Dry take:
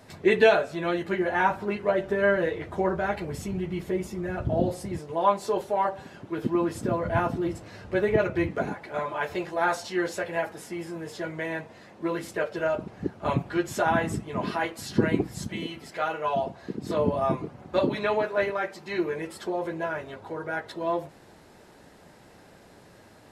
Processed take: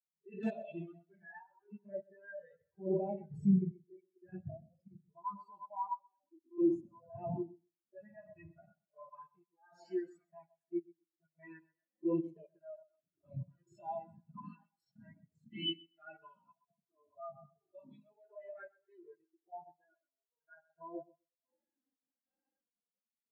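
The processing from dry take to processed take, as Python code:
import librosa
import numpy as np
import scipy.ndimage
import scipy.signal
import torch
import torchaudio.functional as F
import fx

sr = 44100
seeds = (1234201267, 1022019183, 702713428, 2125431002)

p1 = scipy.signal.sosfilt(scipy.signal.butter(2, 110.0, 'highpass', fs=sr, output='sos'), x)
p2 = fx.high_shelf(p1, sr, hz=2700.0, db=11.5)
p3 = fx.hum_notches(p2, sr, base_hz=60, count=10)
p4 = p3 + fx.echo_alternate(p3, sr, ms=114, hz=1000.0, feedback_pct=60, wet_db=-10.0, dry=0)
p5 = fx.dynamic_eq(p4, sr, hz=430.0, q=1.8, threshold_db=-38.0, ratio=4.0, max_db=-5)
p6 = fx.level_steps(p5, sr, step_db=17)
p7 = fx.tremolo_random(p6, sr, seeds[0], hz=3.5, depth_pct=80)
p8 = fx.env_flanger(p7, sr, rest_ms=5.5, full_db=-31.0)
p9 = (np.mod(10.0 ** (22.0 / 20.0) * p8 + 1.0, 2.0) - 1.0) / 10.0 ** (22.0 / 20.0)
p10 = fx.hpss(p9, sr, part='percussive', gain_db=-18)
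p11 = fx.echo_feedback(p10, sr, ms=127, feedback_pct=33, wet_db=-9.5)
p12 = fx.spectral_expand(p11, sr, expansion=2.5)
y = p12 * librosa.db_to_amplitude(8.0)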